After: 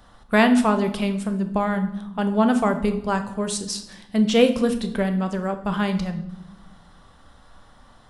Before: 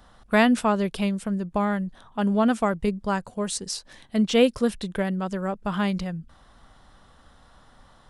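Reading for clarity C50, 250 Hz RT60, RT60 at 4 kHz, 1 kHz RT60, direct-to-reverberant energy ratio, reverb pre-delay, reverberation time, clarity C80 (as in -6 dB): 11.5 dB, 1.7 s, 0.70 s, 0.85 s, 7.0 dB, 10 ms, 1.0 s, 14.5 dB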